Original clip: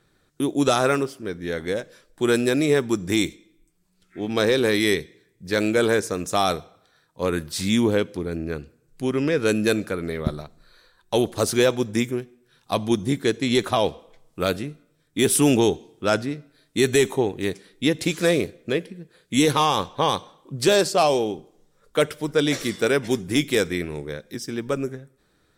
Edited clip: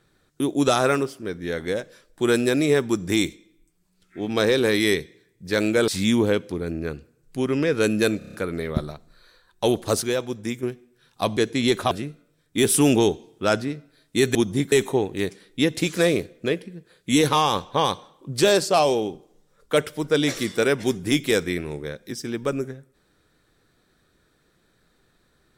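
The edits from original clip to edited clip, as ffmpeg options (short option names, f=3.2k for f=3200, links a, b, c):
-filter_complex "[0:a]asplit=13[a][b][c][d][e][f][g][h][i][j][k][l][m];[a]atrim=end=5.882[n];[b]atrim=start=7.528:end=9.862[o];[c]atrim=start=9.828:end=9.862[p];[d]atrim=start=9.828:end=9.862[q];[e]atrim=start=9.828:end=9.862[r];[f]atrim=start=9.828:end=9.862[s];[g]atrim=start=9.828:end=11.522[t];[h]atrim=start=11.518:end=12.132,asetpts=PTS-STARTPTS,volume=-6dB[u];[i]atrim=start=12.128:end=12.872[v];[j]atrim=start=13.238:end=13.782[w];[k]atrim=start=14.518:end=16.962[x];[l]atrim=start=12.868:end=13.242[y];[m]atrim=start=16.958[z];[n][o]acrossfade=d=0.004:c1=hsin:c2=hsin[aa];[aa][p]acrossfade=d=0.004:c1=hsin:c2=hsin[ab];[ab][q]acrossfade=d=0.004:c1=hsin:c2=hsin[ac];[ac][r]acrossfade=d=0.004:c1=hsin:c2=hsin[ad];[ad][s]acrossfade=d=0.004:c1=hsin:c2=hsin[ae];[ae][t]acrossfade=d=0.004:c1=hsin:c2=hsin[af];[af][u]acrossfade=d=0.004:c1=hsin:c2=hsin[ag];[ag][v]acrossfade=d=0.004:c1=hsin:c2=hsin[ah];[ah][w]acrossfade=d=0.004:c1=hsin:c2=hsin[ai];[ai][x]acrossfade=d=0.004:c1=hsin:c2=hsin[aj];[aj][y]acrossfade=d=0.004:c1=hsin:c2=hsin[ak];[ak][z]acrossfade=d=0.004:c1=hsin:c2=hsin"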